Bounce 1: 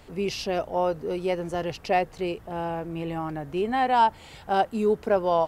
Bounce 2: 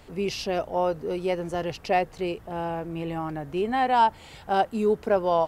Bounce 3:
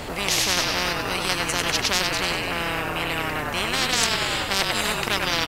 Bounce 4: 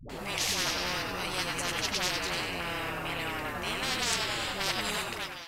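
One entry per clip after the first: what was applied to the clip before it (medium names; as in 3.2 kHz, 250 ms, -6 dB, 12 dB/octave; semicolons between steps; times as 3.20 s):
no audible change
frequency-shifting echo 97 ms, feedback 59%, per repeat -36 Hz, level -5.5 dB; Chebyshev shaper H 7 -24 dB, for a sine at -6.5 dBFS; spectrum-flattening compressor 10:1; trim +3.5 dB
fade out at the end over 0.57 s; flange 0.66 Hz, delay 6.8 ms, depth 6.9 ms, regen -53%; phase dispersion highs, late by 96 ms, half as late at 400 Hz; trim -4 dB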